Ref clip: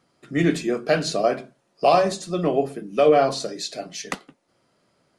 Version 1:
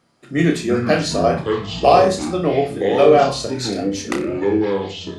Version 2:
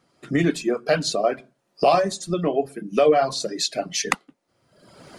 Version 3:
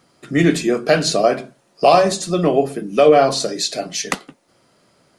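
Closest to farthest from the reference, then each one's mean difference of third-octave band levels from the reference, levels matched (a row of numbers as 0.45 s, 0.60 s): 3, 2, 1; 1.5 dB, 4.0 dB, 5.5 dB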